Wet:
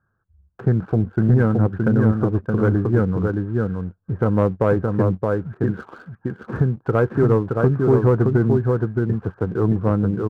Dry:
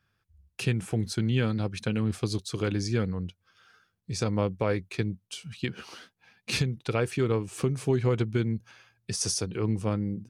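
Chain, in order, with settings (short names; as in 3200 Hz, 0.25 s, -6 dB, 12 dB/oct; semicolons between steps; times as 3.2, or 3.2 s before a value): Chebyshev low-pass 1600 Hz, order 6; echo 0.62 s -4 dB; sample leveller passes 1; gain +6.5 dB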